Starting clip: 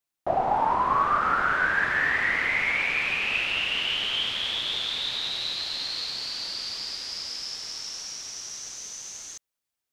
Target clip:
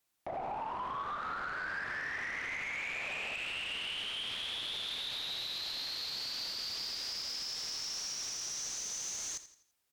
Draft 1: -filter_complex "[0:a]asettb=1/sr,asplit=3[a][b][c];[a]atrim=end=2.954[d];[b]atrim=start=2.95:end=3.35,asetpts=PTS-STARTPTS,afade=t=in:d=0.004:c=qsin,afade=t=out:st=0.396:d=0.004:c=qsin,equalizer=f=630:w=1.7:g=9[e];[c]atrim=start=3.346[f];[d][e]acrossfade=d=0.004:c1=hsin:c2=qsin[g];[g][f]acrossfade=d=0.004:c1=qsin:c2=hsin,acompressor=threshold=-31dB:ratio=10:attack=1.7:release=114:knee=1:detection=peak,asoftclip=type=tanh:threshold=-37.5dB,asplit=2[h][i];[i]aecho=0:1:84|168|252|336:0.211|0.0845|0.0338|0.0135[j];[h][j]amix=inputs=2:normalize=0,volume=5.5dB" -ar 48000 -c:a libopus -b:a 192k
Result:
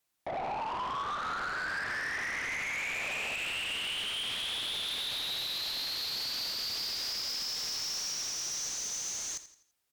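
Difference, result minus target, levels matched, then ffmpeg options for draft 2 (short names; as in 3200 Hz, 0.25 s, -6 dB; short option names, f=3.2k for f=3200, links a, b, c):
compressor: peak gain reduction -7 dB
-filter_complex "[0:a]asettb=1/sr,asplit=3[a][b][c];[a]atrim=end=2.954[d];[b]atrim=start=2.95:end=3.35,asetpts=PTS-STARTPTS,afade=t=in:d=0.004:c=qsin,afade=t=out:st=0.396:d=0.004:c=qsin,equalizer=f=630:w=1.7:g=9[e];[c]atrim=start=3.346[f];[d][e]acrossfade=d=0.004:c1=hsin:c2=qsin[g];[g][f]acrossfade=d=0.004:c1=qsin:c2=hsin,acompressor=threshold=-38.5dB:ratio=10:attack=1.7:release=114:knee=1:detection=peak,asoftclip=type=tanh:threshold=-37.5dB,asplit=2[h][i];[i]aecho=0:1:84|168|252|336:0.211|0.0845|0.0338|0.0135[j];[h][j]amix=inputs=2:normalize=0,volume=5.5dB" -ar 48000 -c:a libopus -b:a 192k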